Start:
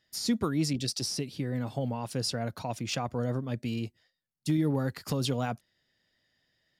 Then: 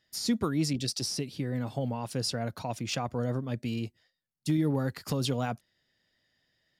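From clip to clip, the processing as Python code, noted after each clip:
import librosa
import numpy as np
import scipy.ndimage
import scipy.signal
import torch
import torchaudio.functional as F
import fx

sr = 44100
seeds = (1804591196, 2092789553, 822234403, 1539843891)

y = x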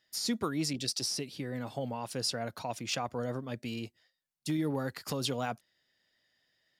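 y = fx.low_shelf(x, sr, hz=250.0, db=-10.0)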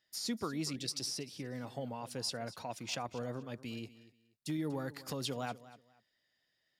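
y = fx.echo_feedback(x, sr, ms=239, feedback_pct=23, wet_db=-17.0)
y = F.gain(torch.from_numpy(y), -5.0).numpy()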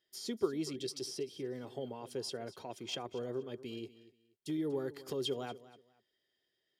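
y = fx.small_body(x, sr, hz=(390.0, 3200.0), ring_ms=50, db=18)
y = F.gain(torch.from_numpy(y), -5.5).numpy()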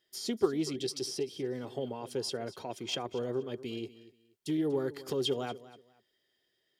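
y = fx.doppler_dist(x, sr, depth_ms=0.1)
y = F.gain(torch.from_numpy(y), 5.0).numpy()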